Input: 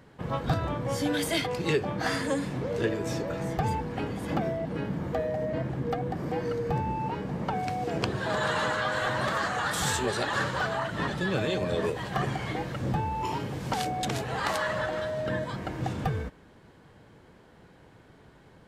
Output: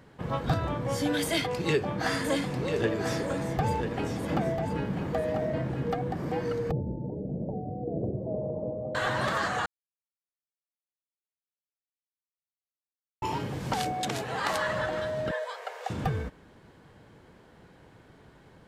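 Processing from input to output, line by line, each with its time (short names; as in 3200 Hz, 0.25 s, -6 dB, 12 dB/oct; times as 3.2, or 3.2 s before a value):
1.25–5.96 echo 0.993 s -7.5 dB
6.71–8.95 elliptic low-pass 620 Hz, stop band 60 dB
9.66–13.22 mute
13.92–14.53 HPF 180 Hz 6 dB/oct
15.31–15.9 steep high-pass 430 Hz 96 dB/oct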